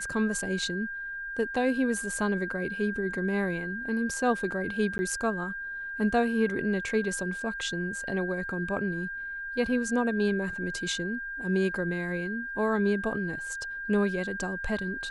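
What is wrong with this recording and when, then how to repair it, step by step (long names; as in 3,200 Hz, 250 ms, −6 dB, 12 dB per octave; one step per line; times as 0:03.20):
whistle 1,600 Hz −34 dBFS
0:04.98–0:04.99: drop-out 10 ms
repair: notch filter 1,600 Hz, Q 30
repair the gap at 0:04.98, 10 ms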